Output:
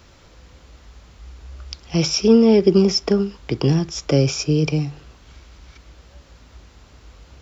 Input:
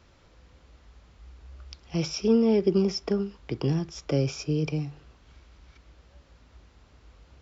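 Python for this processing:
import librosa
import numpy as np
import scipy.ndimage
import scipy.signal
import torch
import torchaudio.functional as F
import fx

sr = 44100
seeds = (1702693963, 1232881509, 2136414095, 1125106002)

y = fx.high_shelf(x, sr, hz=5700.0, db=8.5)
y = y * 10.0 ** (8.5 / 20.0)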